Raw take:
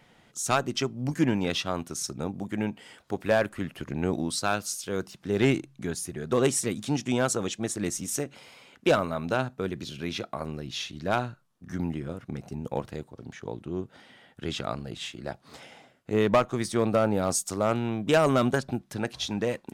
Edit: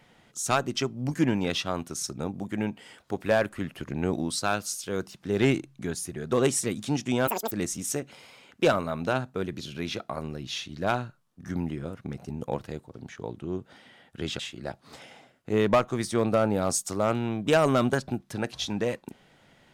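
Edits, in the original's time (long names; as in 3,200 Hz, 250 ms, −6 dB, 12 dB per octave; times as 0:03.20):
0:07.27–0:07.75: play speed 198%
0:14.63–0:15.00: remove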